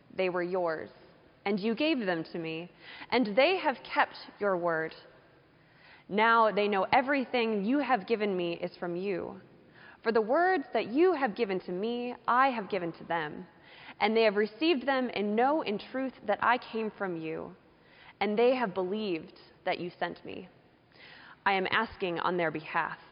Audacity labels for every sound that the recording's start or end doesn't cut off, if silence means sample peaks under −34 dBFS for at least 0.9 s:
6.110000	20.400000	sound